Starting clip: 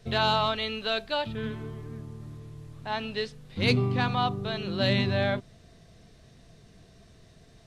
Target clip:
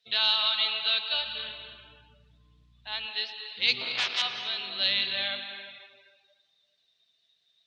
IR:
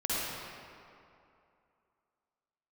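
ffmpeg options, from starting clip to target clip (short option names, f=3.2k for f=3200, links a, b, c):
-filter_complex "[0:a]asettb=1/sr,asplit=3[a][b][c];[a]atrim=end=3.814[d];[b]atrim=start=3.81:end=4.22,asetpts=PTS-STARTPTS,afade=t=in:d=0.004:c=qsin,afade=t=out:st=0.406:d=0.004:c=qsin,aeval=exprs='0.266*(cos(1*acos(clip(val(0)/0.266,-1,1)))-cos(1*PI/2))+0.0668*(cos(7*acos(clip(val(0)/0.266,-1,1)))-cos(7*PI/2))+0.0299*(cos(8*acos(clip(val(0)/0.266,-1,1)))-cos(8*PI/2))':c=same[e];[c]atrim=start=4.216[f];[d][e]acrossfade=d=0.004:c1=hsin:c2=qsin[g];[g][f]acrossfade=d=0.004:c1=qsin:c2=hsin,bandpass=f=3.5k:t=q:w=2.2:csg=0,asplit=2[h][i];[1:a]atrim=start_sample=2205,adelay=116[j];[i][j]afir=irnorm=-1:irlink=0,volume=-14dB[k];[h][k]amix=inputs=2:normalize=0,asettb=1/sr,asplit=3[l][m][n];[l]atrim=end=1.124[o];[m]atrim=start=1.12:end=3.06,asetpts=PTS-STARTPTS,afade=t=in:d=0.004:c=qsin,afade=t=out:st=1.936:d=0.004:c=qsin,aeval=exprs='val(0)+0.000501*(sin(2*PI*60*n/s)+sin(2*PI*2*60*n/s)/2+sin(2*PI*3*60*n/s)/3+sin(2*PI*4*60*n/s)/4+sin(2*PI*5*60*n/s)/5)':c=same[p];[n]atrim=start=3.056[q];[o][p]acrossfade=d=0.004:c1=hsin:c2=qsin[r];[r][q]acrossfade=d=0.004:c1=qsin:c2=hsin,afftdn=nr=16:nf=-59,volume=7.5dB"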